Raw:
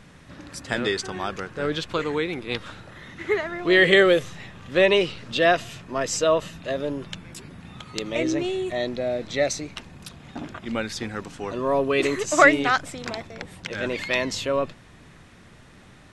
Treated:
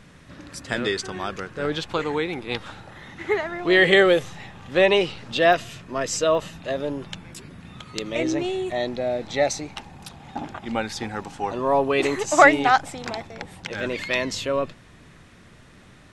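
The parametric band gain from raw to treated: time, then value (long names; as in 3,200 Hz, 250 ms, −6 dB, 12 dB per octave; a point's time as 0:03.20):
parametric band 820 Hz 0.28 octaves
−2.5 dB
from 0:01.65 +9 dB
from 0:05.53 −2.5 dB
from 0:06.35 +6 dB
from 0:07.31 −2.5 dB
from 0:08.20 +8.5 dB
from 0:09.26 +14.5 dB
from 0:13.05 +7.5 dB
from 0:13.80 −2.5 dB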